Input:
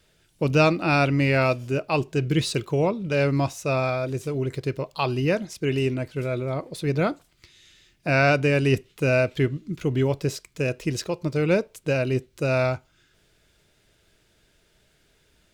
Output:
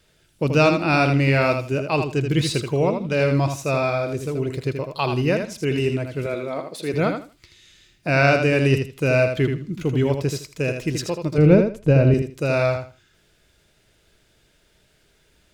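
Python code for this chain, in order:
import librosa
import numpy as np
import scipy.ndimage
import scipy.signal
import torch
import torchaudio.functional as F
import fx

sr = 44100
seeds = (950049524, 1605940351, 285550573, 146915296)

y = fx.highpass(x, sr, hz=260.0, slope=12, at=(6.26, 6.94))
y = fx.tilt_eq(y, sr, slope=-3.5, at=(11.38, 12.14))
y = fx.echo_feedback(y, sr, ms=80, feedback_pct=20, wet_db=-6.5)
y = y * 10.0 ** (1.5 / 20.0)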